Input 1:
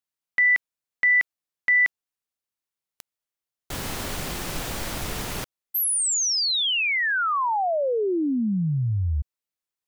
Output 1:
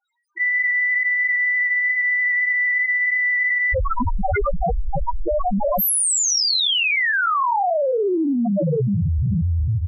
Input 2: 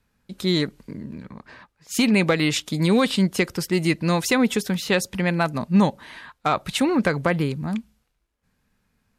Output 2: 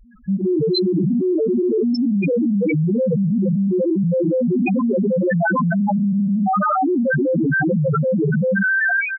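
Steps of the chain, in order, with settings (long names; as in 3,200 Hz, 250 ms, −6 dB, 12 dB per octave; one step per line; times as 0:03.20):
reverb whose tail is shaped and stops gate 500 ms flat, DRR 2.5 dB
harmonic and percussive parts rebalanced percussive −12 dB
reverb reduction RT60 0.52 s
high-shelf EQ 2,500 Hz −5.5 dB
mains-hum notches 60/120/180 Hz
double-tracking delay 25 ms −3.5 dB
echo through a band-pass that steps 393 ms, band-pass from 190 Hz, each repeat 1.4 octaves, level −3.5 dB
automatic gain control gain up to 5 dB
low-shelf EQ 400 Hz −11 dB
all-pass dispersion highs, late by 54 ms, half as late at 1,800 Hz
spectral peaks only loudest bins 1
envelope flattener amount 100%
level +3.5 dB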